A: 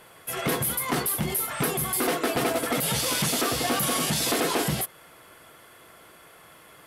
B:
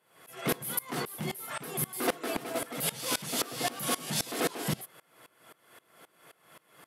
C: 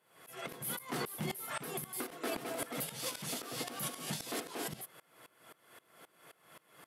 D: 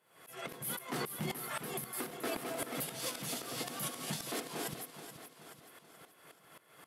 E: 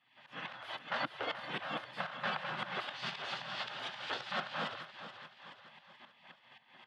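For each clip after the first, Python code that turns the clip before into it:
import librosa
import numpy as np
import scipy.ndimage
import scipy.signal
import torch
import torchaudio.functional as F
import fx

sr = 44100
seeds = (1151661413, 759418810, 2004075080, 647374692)

y1 = scipy.signal.sosfilt(scipy.signal.butter(4, 120.0, 'highpass', fs=sr, output='sos'), x)
y1 = fx.tremolo_decay(y1, sr, direction='swelling', hz=3.8, depth_db=23)
y2 = fx.over_compress(y1, sr, threshold_db=-33.0, ratio=-0.5)
y2 = F.gain(torch.from_numpy(y2), -4.5).numpy()
y3 = fx.echo_feedback(y2, sr, ms=429, feedback_pct=50, wet_db=-11.0)
y4 = fx.cabinet(y3, sr, low_hz=160.0, low_slope=24, high_hz=3400.0, hz=(170.0, 300.0, 430.0, 940.0, 1400.0, 2200.0), db=(9, 8, 10, -3, 7, -7))
y4 = fx.spec_gate(y4, sr, threshold_db=-15, keep='weak')
y4 = F.gain(torch.from_numpy(y4), 8.0).numpy()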